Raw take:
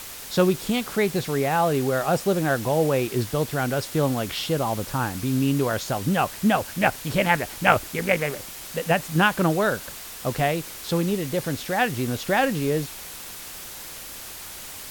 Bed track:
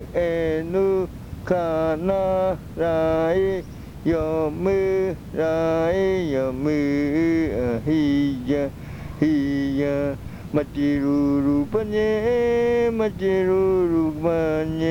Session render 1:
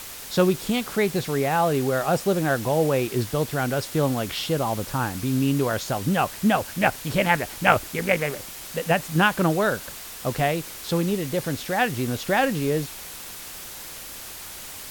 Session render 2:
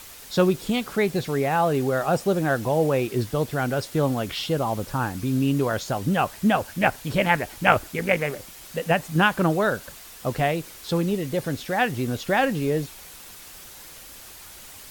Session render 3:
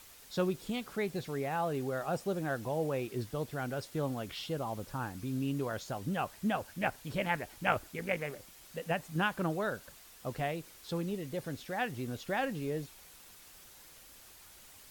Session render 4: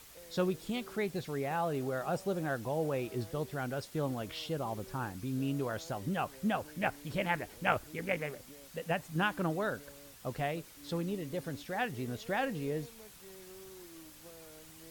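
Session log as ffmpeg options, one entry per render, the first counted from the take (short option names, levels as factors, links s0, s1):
-af anull
-af "afftdn=nr=6:nf=-38"
-af "volume=0.251"
-filter_complex "[1:a]volume=0.0211[s0];[0:a][s0]amix=inputs=2:normalize=0"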